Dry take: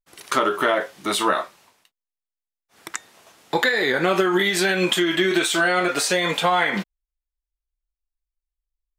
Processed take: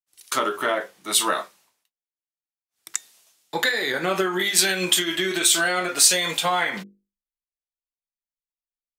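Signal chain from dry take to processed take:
high-shelf EQ 3,900 Hz +12 dB
mains-hum notches 50/100/150/200/250/300/350/400/450/500 Hz
multiband upward and downward expander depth 70%
level −5 dB

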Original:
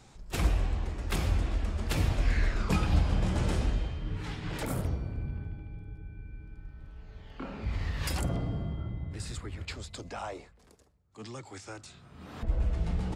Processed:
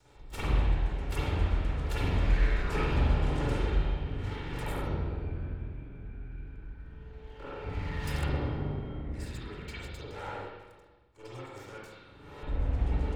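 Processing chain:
lower of the sound and its delayed copy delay 2.2 ms
spring reverb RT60 1.2 s, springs 41/48 ms, chirp 30 ms, DRR −9 dB
level −8 dB

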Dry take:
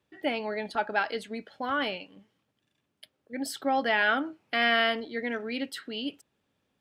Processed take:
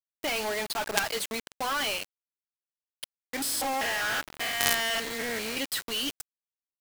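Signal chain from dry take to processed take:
0:03.42–0:05.57: spectrum averaged block by block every 200 ms
RIAA equalisation recording
notch filter 1,400 Hz, Q 23
log-companded quantiser 2 bits
level −3 dB

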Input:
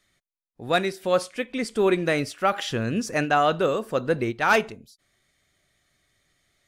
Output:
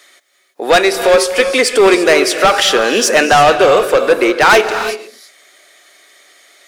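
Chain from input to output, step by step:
high-pass filter 380 Hz 24 dB per octave
in parallel at 0 dB: downward compressor, threshold −32 dBFS, peak gain reduction 16.5 dB
on the sum: soft clipping −21 dBFS, distortion −8 dB
reverb whose tail is shaped and stops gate 370 ms rising, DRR 9 dB
boost into a limiter +18 dB
level −1 dB

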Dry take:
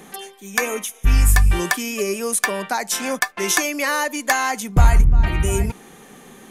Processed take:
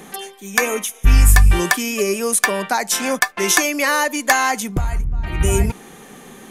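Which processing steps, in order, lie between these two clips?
0:04.60–0:05.41: downward compressor 16 to 1, threshold −20 dBFS, peak gain reduction 13.5 dB
level +3.5 dB

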